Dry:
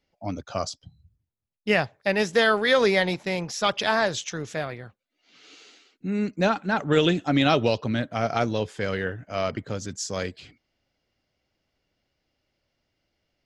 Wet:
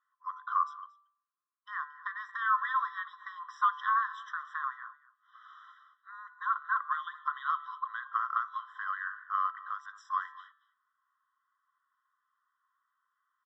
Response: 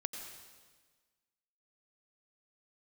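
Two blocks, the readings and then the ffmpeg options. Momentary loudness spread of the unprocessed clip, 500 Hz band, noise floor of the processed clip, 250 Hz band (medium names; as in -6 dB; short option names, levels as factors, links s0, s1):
14 LU, under -40 dB, -83 dBFS, under -40 dB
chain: -filter_complex "[0:a]lowshelf=f=170:g=-10.5,bandreject=f=146.3:t=h:w=4,bandreject=f=292.6:t=h:w=4,bandreject=f=438.9:t=h:w=4,bandreject=f=585.2:t=h:w=4,bandreject=f=731.5:t=h:w=4,bandreject=f=877.8:t=h:w=4,bandreject=f=1024.1:t=h:w=4,bandreject=f=1170.4:t=h:w=4,bandreject=f=1316.7:t=h:w=4,bandreject=f=1463:t=h:w=4,bandreject=f=1609.3:t=h:w=4,bandreject=f=1755.6:t=h:w=4,bandreject=f=1901.9:t=h:w=4,bandreject=f=2048.2:t=h:w=4,bandreject=f=2194.5:t=h:w=4,bandreject=f=2340.8:t=h:w=4,bandreject=f=2487.1:t=h:w=4,bandreject=f=2633.4:t=h:w=4,bandreject=f=2779.7:t=h:w=4,bandreject=f=2926:t=h:w=4,bandreject=f=3072.3:t=h:w=4,bandreject=f=3218.6:t=h:w=4,bandreject=f=3364.9:t=h:w=4,bandreject=f=3511.2:t=h:w=4,bandreject=f=3657.5:t=h:w=4,bandreject=f=3803.8:t=h:w=4,bandreject=f=3950.1:t=h:w=4,bandreject=f=4096.4:t=h:w=4,bandreject=f=4242.7:t=h:w=4,bandreject=f=4389:t=h:w=4,acompressor=threshold=0.0251:ratio=4,lowpass=f=1000:t=q:w=4,asplit=2[s0][s1];[s1]aecho=0:1:228:0.112[s2];[s0][s2]amix=inputs=2:normalize=0,afftfilt=real='re*eq(mod(floor(b*sr/1024/1000),2),1)':imag='im*eq(mod(floor(b*sr/1024/1000),2),1)':win_size=1024:overlap=0.75,volume=2.37"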